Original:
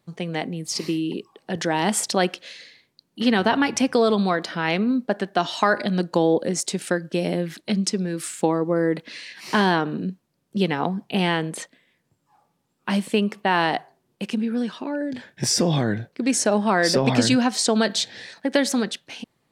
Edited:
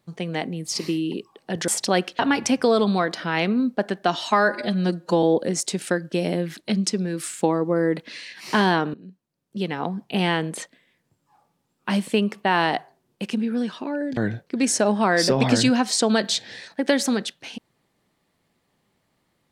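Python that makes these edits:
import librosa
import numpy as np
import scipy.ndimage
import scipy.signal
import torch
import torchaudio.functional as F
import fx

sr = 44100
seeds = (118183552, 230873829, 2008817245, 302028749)

y = fx.edit(x, sr, fx.cut(start_s=1.68, length_s=0.26),
    fx.cut(start_s=2.45, length_s=1.05),
    fx.stretch_span(start_s=5.61, length_s=0.62, factor=1.5),
    fx.fade_in_from(start_s=9.94, length_s=1.36, floor_db=-20.5),
    fx.cut(start_s=15.17, length_s=0.66), tone=tone)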